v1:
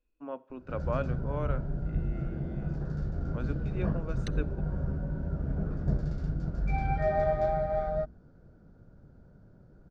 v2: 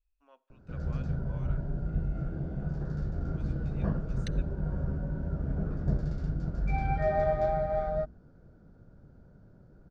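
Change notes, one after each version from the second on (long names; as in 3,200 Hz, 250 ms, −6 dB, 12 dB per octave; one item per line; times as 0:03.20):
first voice: add first difference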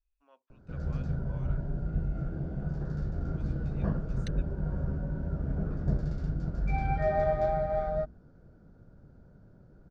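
reverb: off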